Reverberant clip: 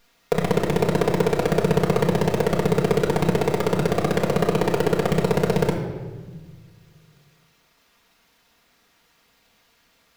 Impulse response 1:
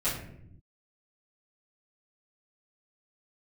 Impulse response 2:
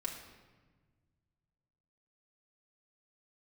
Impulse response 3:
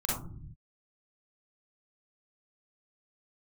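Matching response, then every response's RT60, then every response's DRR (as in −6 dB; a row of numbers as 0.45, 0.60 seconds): 2; 0.75 s, 1.4 s, non-exponential decay; −13.0, −2.0, −5.5 decibels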